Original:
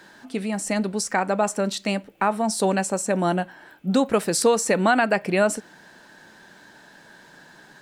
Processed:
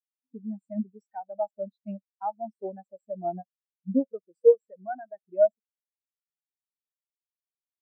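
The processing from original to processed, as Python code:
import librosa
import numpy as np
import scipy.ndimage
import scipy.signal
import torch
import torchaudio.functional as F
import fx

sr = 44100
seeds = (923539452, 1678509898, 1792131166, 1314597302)

y = fx.rider(x, sr, range_db=5, speed_s=0.5)
y = fx.peak_eq(y, sr, hz=160.0, db=-3.5, octaves=2.7)
y = fx.spectral_expand(y, sr, expansion=4.0)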